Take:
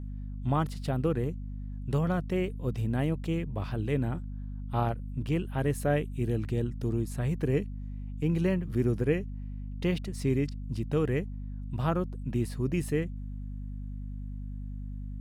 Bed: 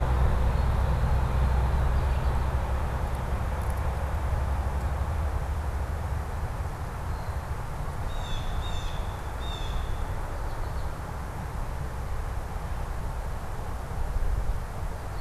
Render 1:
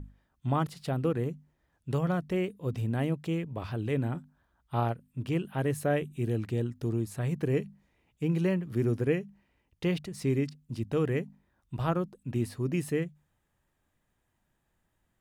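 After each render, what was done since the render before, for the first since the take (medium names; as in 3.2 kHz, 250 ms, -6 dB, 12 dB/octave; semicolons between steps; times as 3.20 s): hum notches 50/100/150/200/250 Hz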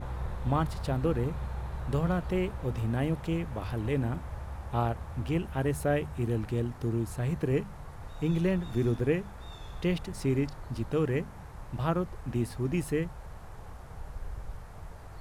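add bed -11.5 dB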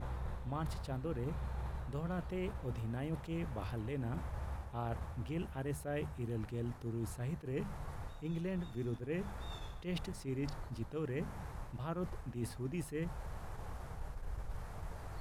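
reverse; compression 5:1, threshold -37 dBFS, peak gain reduction 14 dB; reverse; attacks held to a fixed rise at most 240 dB/s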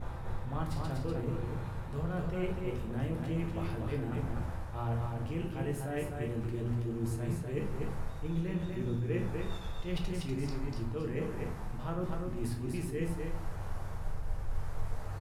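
on a send: delay 244 ms -4 dB; on the sum: simulated room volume 65 m³, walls mixed, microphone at 0.62 m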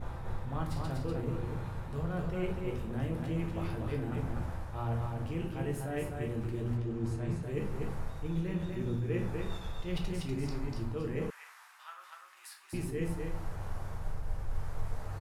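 6.77–7.43 s: distance through air 57 m; 11.30–12.73 s: high-pass 1.2 kHz 24 dB/octave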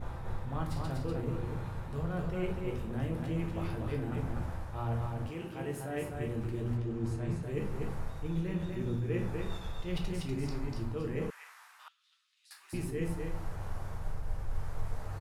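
5.29–6.13 s: high-pass 380 Hz -> 100 Hz 6 dB/octave; 11.88–12.51 s: ladder band-pass 4.3 kHz, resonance 50%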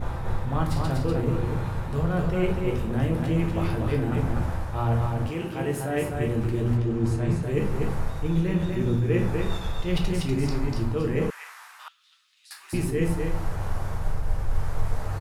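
trim +10 dB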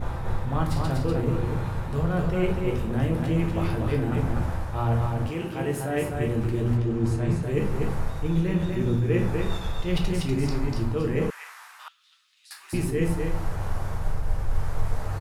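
no audible change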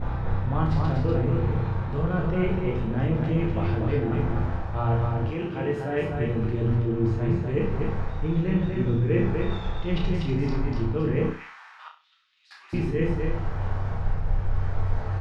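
distance through air 200 m; flutter echo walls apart 5.5 m, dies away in 0.32 s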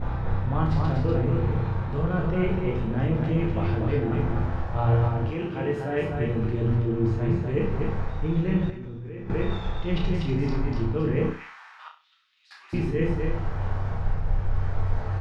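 4.55–5.08 s: doubling 24 ms -3 dB; 8.70–9.30 s: level held to a coarse grid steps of 18 dB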